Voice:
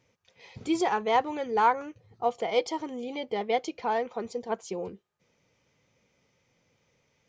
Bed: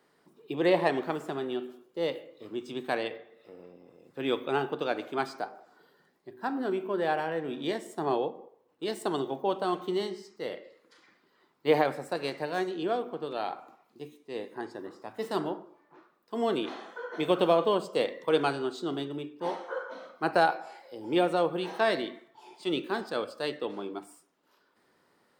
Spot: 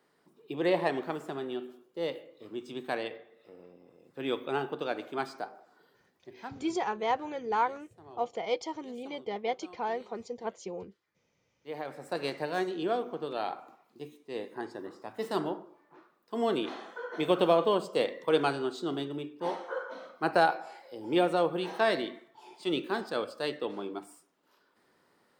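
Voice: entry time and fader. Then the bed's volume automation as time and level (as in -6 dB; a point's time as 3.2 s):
5.95 s, -5.0 dB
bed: 6.37 s -3 dB
6.65 s -22.5 dB
11.56 s -22.5 dB
12.17 s -0.5 dB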